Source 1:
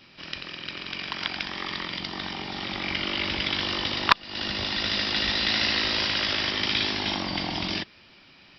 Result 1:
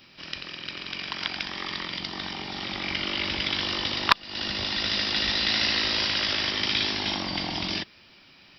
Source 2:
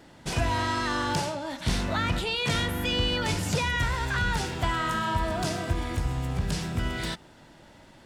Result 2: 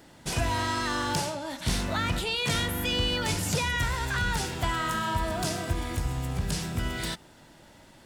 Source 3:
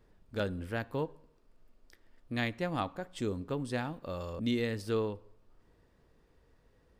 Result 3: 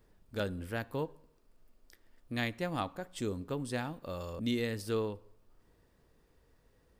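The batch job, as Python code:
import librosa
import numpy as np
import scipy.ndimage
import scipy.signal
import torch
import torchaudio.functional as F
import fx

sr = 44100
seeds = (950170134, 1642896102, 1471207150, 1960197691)

y = fx.high_shelf(x, sr, hz=7500.0, db=10.0)
y = y * librosa.db_to_amplitude(-1.5)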